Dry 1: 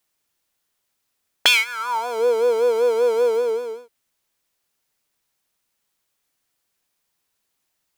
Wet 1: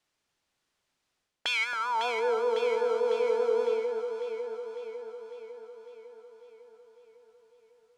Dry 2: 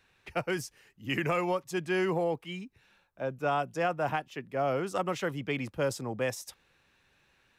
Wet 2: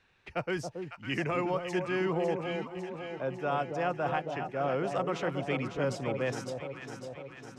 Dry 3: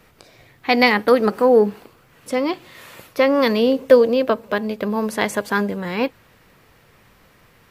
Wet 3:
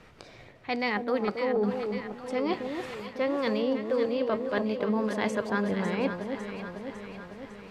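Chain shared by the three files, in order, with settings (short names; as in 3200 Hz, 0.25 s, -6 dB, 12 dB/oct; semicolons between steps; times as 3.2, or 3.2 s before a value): reverse; compressor 6:1, threshold -26 dBFS; reverse; air absorption 73 m; echo with dull and thin repeats by turns 0.276 s, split 940 Hz, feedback 77%, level -5.5 dB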